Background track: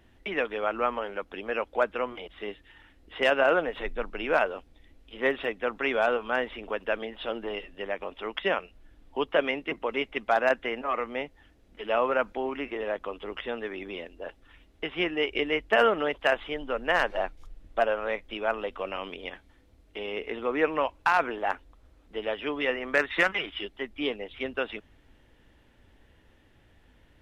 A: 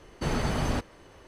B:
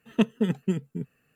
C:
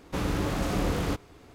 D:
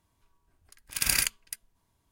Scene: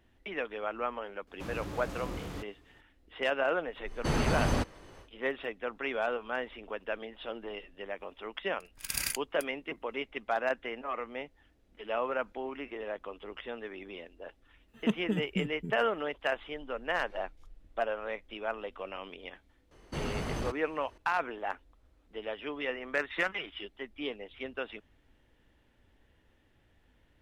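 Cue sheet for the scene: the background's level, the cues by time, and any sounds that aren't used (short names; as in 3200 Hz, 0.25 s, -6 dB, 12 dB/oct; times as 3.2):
background track -7 dB
1.27 add C -12 dB
3.83 add A -0.5 dB, fades 0.10 s
7.88 add D -8 dB
14.68 add B -7 dB
19.71 add A -7 dB + overloaded stage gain 22 dB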